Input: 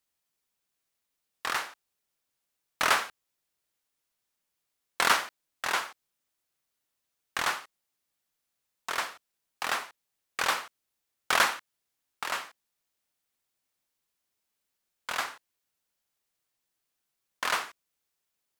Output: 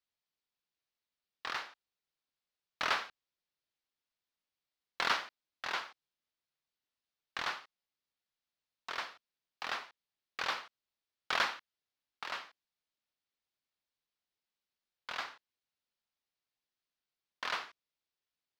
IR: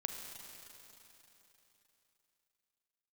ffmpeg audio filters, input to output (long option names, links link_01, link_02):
-af "highshelf=frequency=6400:width_type=q:width=1.5:gain=-12.5,volume=-8.5dB"